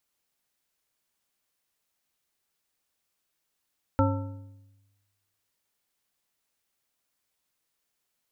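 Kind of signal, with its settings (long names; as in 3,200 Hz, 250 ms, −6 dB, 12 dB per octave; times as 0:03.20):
struck metal bar, lowest mode 100 Hz, modes 5, decay 1.20 s, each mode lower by 1.5 dB, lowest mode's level −21 dB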